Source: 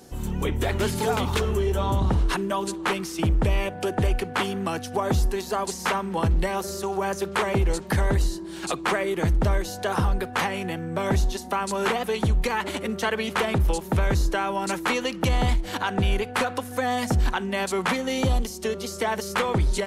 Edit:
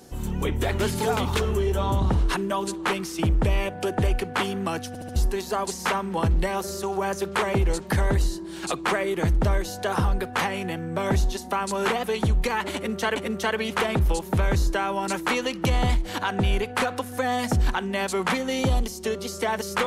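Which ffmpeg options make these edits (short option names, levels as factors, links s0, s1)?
-filter_complex "[0:a]asplit=6[s0][s1][s2][s3][s4][s5];[s0]atrim=end=4.952[s6];[s1]atrim=start=4.878:end=4.952[s7];[s2]atrim=start=4.878:end=4.952[s8];[s3]atrim=start=4.878:end=4.952[s9];[s4]atrim=start=5.158:end=13.162[s10];[s5]atrim=start=12.748[s11];[s6][s7]acrossfade=d=0.004:c1=hsin:c2=hsin[s12];[s12][s8]acrossfade=d=0.004:c1=hsin:c2=hsin[s13];[s13][s9]acrossfade=d=0.004:c1=hsin:c2=hsin[s14];[s14][s10]acrossfade=d=0.004:c1=hsin:c2=hsin[s15];[s15][s11]acrossfade=d=0.004:c1=hsin:c2=hsin"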